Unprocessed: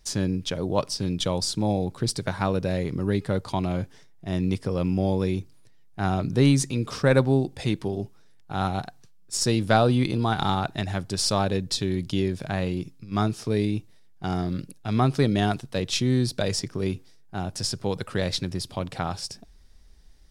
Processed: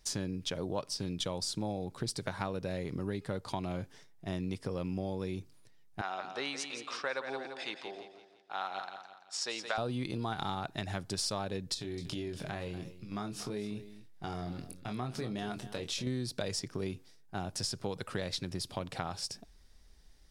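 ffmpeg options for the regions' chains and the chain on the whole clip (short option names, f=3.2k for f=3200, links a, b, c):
-filter_complex "[0:a]asettb=1/sr,asplit=3[a][b][c];[a]atrim=end=6.014[d];[b]atrim=start=6.01:end=9.78,asetpts=PTS-STARTPTS,afade=t=in:d=0.004:c=qsin,afade=t=out:st=3.766:d=0.004:c=qsin,highpass=770,lowpass=4.6k,aecho=1:1:170|340|510|680|850:0.335|0.141|0.0591|0.0248|0.0104,atrim=end_sample=166257[e];[c]atrim=start=9.776[f];[d][e]acrossfade=d=0.004:c1=hsin:c2=qsin[g];[g][f]acrossfade=d=0.004:c1=qsin:c2=hsin,asettb=1/sr,asplit=3[h][i][j];[h]atrim=end=11.744[k];[i]atrim=start=11.74:end=16.07,asetpts=PTS-STARTPTS,afade=t=in:d=0.004:c=qsin,afade=t=out:st=4.326:d=0.004:c=qsin,acompressor=threshold=-31dB:ratio=3:attack=3.2:release=140:knee=1:detection=peak,asplit=2[l][m];[m]adelay=24,volume=-6.5dB[n];[l][n]amix=inputs=2:normalize=0,atrim=end_sample=190953,aecho=1:1:238:0.178,atrim=end_sample=190953[o];[j]atrim=start=16.066[p];[k][o]acrossfade=d=0.004:c1=hsin:c2=qsin[q];[q][p]acrossfade=d=0.004:c1=qsin:c2=hsin,lowshelf=f=260:g=-4.5,acompressor=threshold=-30dB:ratio=4,volume=-2.5dB"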